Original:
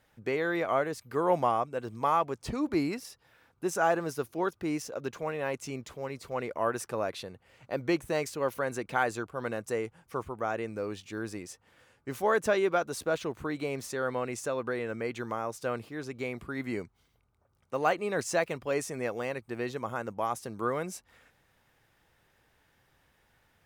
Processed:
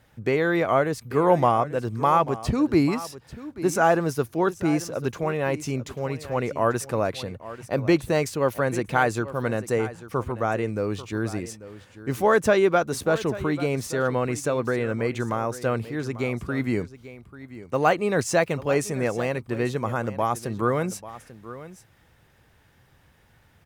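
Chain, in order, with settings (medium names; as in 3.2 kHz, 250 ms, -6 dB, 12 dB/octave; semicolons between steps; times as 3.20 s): peaking EQ 100 Hz +8 dB 2.4 oct; on a send: delay 841 ms -15.5 dB; on the sum: trim +6 dB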